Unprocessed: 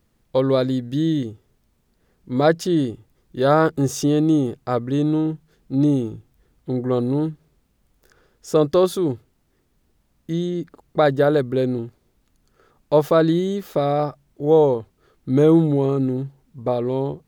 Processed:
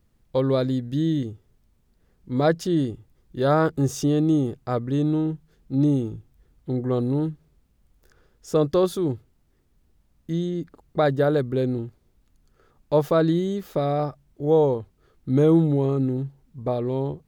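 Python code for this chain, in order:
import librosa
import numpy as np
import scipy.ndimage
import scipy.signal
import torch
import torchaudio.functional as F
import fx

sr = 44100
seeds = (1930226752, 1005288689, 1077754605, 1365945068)

y = fx.low_shelf(x, sr, hz=130.0, db=8.5)
y = y * librosa.db_to_amplitude(-4.5)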